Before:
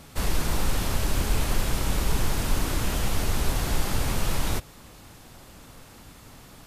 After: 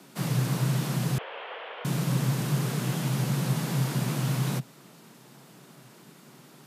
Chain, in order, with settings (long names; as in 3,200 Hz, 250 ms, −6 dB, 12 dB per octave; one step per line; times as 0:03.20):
frequency shifter +120 Hz
0:01.18–0:01.85: Chebyshev band-pass filter 460–3,200 Hz, order 4
level −4.5 dB